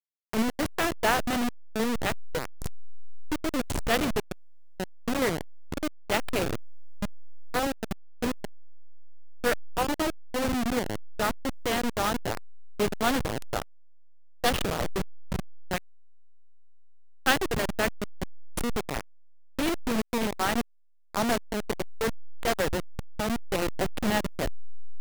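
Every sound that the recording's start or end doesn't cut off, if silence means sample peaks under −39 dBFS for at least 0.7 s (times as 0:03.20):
0:14.44–0:15.78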